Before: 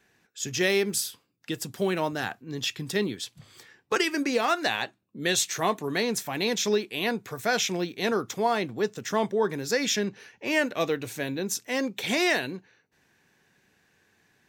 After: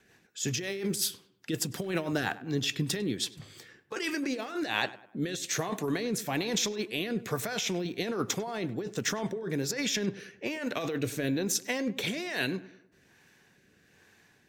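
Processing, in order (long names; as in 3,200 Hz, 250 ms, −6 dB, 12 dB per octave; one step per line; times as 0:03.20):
compressor whose output falls as the input rises −31 dBFS, ratio −1
rotating-speaker cabinet horn 5.5 Hz, later 1.2 Hz, at 0:02.48
on a send: tape delay 99 ms, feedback 46%, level −15.5 dB, low-pass 2,100 Hz
on the sum: level +1.5 dB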